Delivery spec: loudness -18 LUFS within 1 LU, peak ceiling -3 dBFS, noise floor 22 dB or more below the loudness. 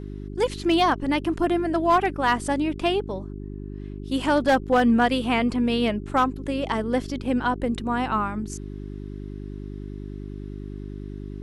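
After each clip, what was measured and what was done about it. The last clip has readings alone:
clipped 0.3%; flat tops at -12.5 dBFS; hum 50 Hz; harmonics up to 400 Hz; hum level -33 dBFS; loudness -23.5 LUFS; peak -12.5 dBFS; loudness target -18.0 LUFS
-> clip repair -12.5 dBFS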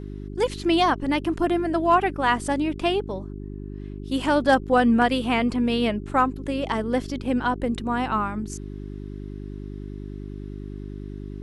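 clipped 0.0%; hum 50 Hz; harmonics up to 400 Hz; hum level -33 dBFS
-> de-hum 50 Hz, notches 8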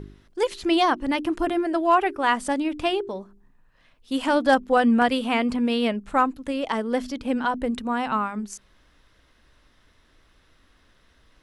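hum none; loudness -23.5 LUFS; peak -6.0 dBFS; loudness target -18.0 LUFS
-> gain +5.5 dB; limiter -3 dBFS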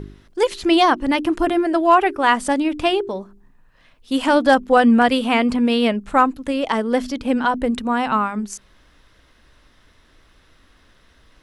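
loudness -18.0 LUFS; peak -3.0 dBFS; noise floor -55 dBFS

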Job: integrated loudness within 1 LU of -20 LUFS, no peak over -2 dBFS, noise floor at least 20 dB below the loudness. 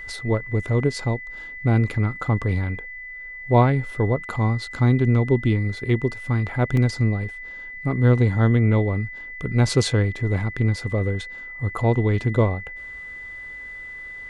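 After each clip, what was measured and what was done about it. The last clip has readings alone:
dropouts 1; longest dropout 2.4 ms; steady tone 2000 Hz; tone level -34 dBFS; loudness -22.0 LUFS; peak -5.0 dBFS; loudness target -20.0 LUFS
-> interpolate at 6.77, 2.4 ms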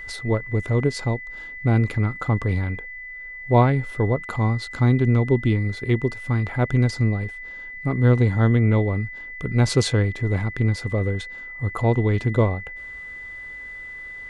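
dropouts 0; steady tone 2000 Hz; tone level -34 dBFS
-> notch 2000 Hz, Q 30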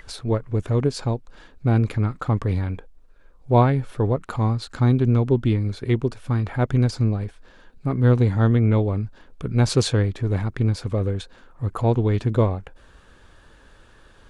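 steady tone none; loudness -22.0 LUFS; peak -4.5 dBFS; loudness target -20.0 LUFS
-> gain +2 dB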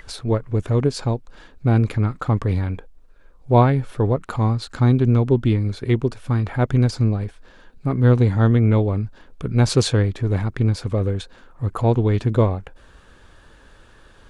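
loudness -20.0 LUFS; peak -2.5 dBFS; noise floor -50 dBFS

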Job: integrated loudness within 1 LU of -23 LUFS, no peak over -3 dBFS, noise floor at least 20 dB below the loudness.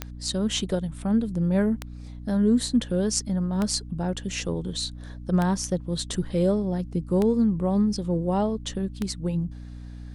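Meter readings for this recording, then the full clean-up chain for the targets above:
clicks 6; hum 60 Hz; harmonics up to 300 Hz; hum level -37 dBFS; loudness -26.0 LUFS; peak -8.5 dBFS; loudness target -23.0 LUFS
-> de-click; notches 60/120/180/240/300 Hz; gain +3 dB

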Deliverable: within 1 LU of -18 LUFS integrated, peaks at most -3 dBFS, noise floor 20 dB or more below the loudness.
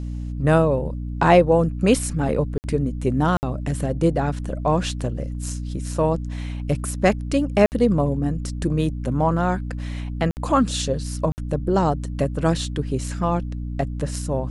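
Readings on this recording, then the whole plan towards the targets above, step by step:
dropouts 5; longest dropout 59 ms; hum 60 Hz; harmonics up to 300 Hz; hum level -26 dBFS; loudness -22.5 LUFS; peak -2.5 dBFS; loudness target -18.0 LUFS
-> interpolate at 2.58/3.37/7.66/10.31/11.32, 59 ms; de-hum 60 Hz, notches 5; gain +4.5 dB; limiter -3 dBFS

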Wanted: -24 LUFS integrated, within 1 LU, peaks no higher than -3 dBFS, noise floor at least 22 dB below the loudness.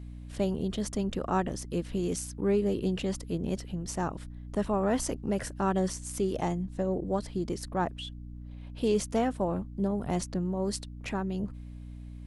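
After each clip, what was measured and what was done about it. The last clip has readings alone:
hum 60 Hz; harmonics up to 300 Hz; hum level -41 dBFS; loudness -31.5 LUFS; peak -14.5 dBFS; loudness target -24.0 LUFS
-> notches 60/120/180/240/300 Hz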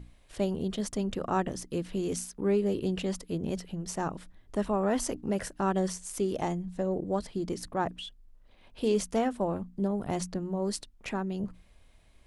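hum none; loudness -32.0 LUFS; peak -14.5 dBFS; loudness target -24.0 LUFS
-> gain +8 dB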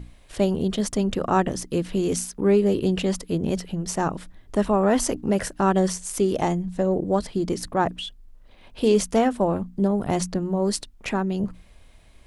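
loudness -24.0 LUFS; peak -6.5 dBFS; noise floor -51 dBFS

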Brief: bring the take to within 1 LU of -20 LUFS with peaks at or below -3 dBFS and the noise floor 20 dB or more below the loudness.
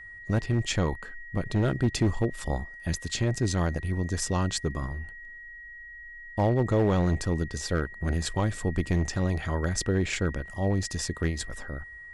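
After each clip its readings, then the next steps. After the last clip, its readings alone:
clipped 1.1%; flat tops at -17.5 dBFS; steady tone 1900 Hz; tone level -42 dBFS; loudness -28.5 LUFS; peak -17.5 dBFS; loudness target -20.0 LUFS
-> clip repair -17.5 dBFS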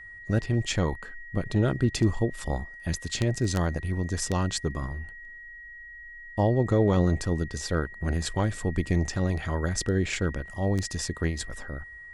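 clipped 0.0%; steady tone 1900 Hz; tone level -42 dBFS
-> notch 1900 Hz, Q 30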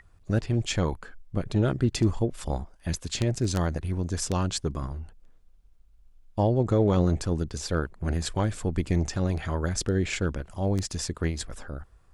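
steady tone none; loudness -28.0 LUFS; peak -8.5 dBFS; loudness target -20.0 LUFS
-> gain +8 dB; limiter -3 dBFS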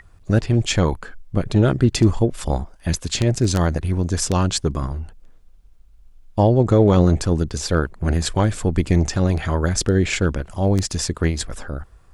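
loudness -20.0 LUFS; peak -3.0 dBFS; noise floor -49 dBFS

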